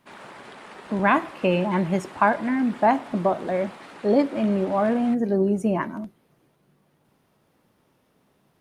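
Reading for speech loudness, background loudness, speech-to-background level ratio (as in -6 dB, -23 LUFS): -23.5 LUFS, -43.0 LUFS, 19.5 dB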